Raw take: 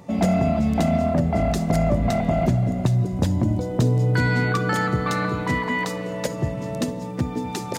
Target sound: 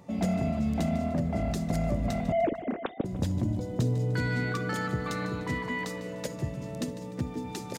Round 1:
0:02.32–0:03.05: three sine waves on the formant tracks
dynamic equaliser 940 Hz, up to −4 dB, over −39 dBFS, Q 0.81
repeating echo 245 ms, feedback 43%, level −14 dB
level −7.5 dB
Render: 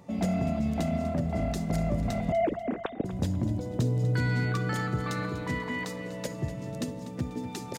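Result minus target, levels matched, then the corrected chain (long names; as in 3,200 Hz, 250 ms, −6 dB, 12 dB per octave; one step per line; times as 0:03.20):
echo 95 ms late
0:02.32–0:03.05: three sine waves on the formant tracks
dynamic equaliser 940 Hz, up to −4 dB, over −39 dBFS, Q 0.81
repeating echo 150 ms, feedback 43%, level −14 dB
level −7.5 dB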